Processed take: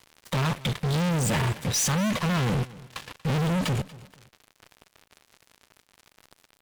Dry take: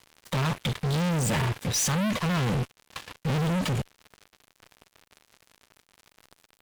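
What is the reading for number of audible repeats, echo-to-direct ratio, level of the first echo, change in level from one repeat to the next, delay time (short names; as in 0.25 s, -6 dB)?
2, -19.5 dB, -20.0 dB, -10.5 dB, 0.236 s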